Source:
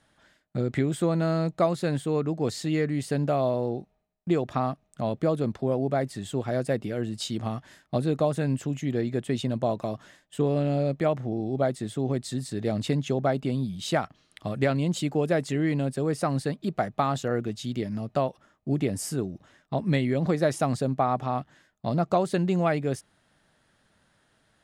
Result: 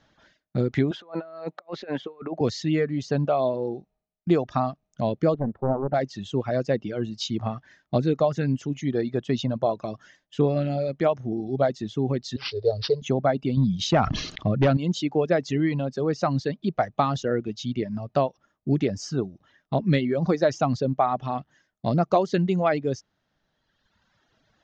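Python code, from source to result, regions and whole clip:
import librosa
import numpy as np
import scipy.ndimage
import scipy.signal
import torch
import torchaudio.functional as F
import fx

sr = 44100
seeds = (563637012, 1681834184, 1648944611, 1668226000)

y = fx.chain(x, sr, fx.bandpass_edges(low_hz=420.0, high_hz=2800.0),
    fx.over_compress(threshold_db=-35.0, ratio=-0.5), at=(0.91, 2.41))
y = fx.chain(y, sr, fx.lowpass(hz=1100.0, slope=12),
    fx.doppler_dist(depth_ms=0.81), at=(5.34, 5.94))
y = fx.chain(y, sr, fx.curve_eq(hz=(100.0, 140.0, 280.0, 440.0, 730.0, 1900.0, 2800.0, 4400.0), db=(0, -10, -25, 8, -5, -16, -14, 8)),
    fx.resample_bad(factor=4, down='none', up='filtered'), at=(12.36, 13.02))
y = fx.chain(y, sr, fx.low_shelf(hz=310.0, db=7.0),
    fx.clip_hard(threshold_db=-17.0),
    fx.sustainer(db_per_s=40.0), at=(13.57, 14.77))
y = fx.dereverb_blind(y, sr, rt60_s=1.6)
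y = scipy.signal.sosfilt(scipy.signal.ellip(4, 1.0, 40, 6300.0, 'lowpass', fs=sr, output='sos'), y)
y = fx.peak_eq(y, sr, hz=2100.0, db=-3.0, octaves=1.5)
y = y * 10.0 ** (5.0 / 20.0)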